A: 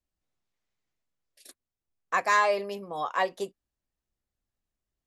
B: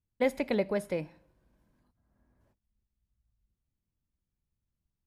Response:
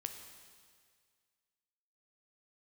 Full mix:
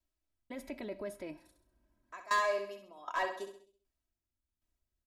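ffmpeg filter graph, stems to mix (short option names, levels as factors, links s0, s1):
-filter_complex "[0:a]acompressor=threshold=0.0316:ratio=2,aeval=exprs='val(0)*pow(10,-23*if(lt(mod(1.3*n/s,1),2*abs(1.3)/1000),1-mod(1.3*n/s,1)/(2*abs(1.3)/1000),(mod(1.3*n/s,1)-2*abs(1.3)/1000)/(1-2*abs(1.3)/1000))/20)':c=same,volume=1,asplit=3[s0][s1][s2];[s1]volume=0.398[s3];[1:a]alimiter=level_in=1.5:limit=0.0631:level=0:latency=1:release=23,volume=0.668,acontrast=57,adelay=300,volume=0.224[s4];[s2]apad=whole_len=236439[s5];[s4][s5]sidechaincompress=threshold=0.00501:ratio=8:attack=16:release=1090[s6];[s3]aecho=0:1:66|132|198|264|330|396:1|0.44|0.194|0.0852|0.0375|0.0165[s7];[s0][s6][s7]amix=inputs=3:normalize=0,asoftclip=type=hard:threshold=0.0422,aecho=1:1:3.1:0.68"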